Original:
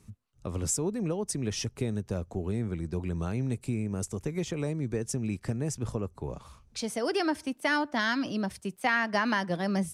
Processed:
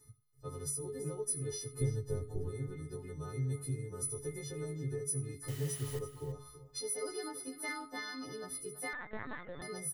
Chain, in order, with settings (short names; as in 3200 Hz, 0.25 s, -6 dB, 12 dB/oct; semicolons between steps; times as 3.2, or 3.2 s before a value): frequency quantiser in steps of 3 st; bell 3000 Hz -10 dB 2 oct; notch 2900 Hz, Q 8.5; comb 2.2 ms, depth 69%; compressor, threshold -29 dBFS, peak gain reduction 10 dB; resonator 140 Hz, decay 0.35 s, harmonics all, mix 100%; echo 85 ms -22 dB; 5.48–5.99 requantised 10-bit, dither triangular; small resonant body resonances 1900/3000 Hz, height 14 dB, ringing for 35 ms; 1.81–2.49 low shelf 170 Hz +12 dB; echo 0.33 s -14 dB; 8.93–9.62 LPC vocoder at 8 kHz pitch kept; gain +8.5 dB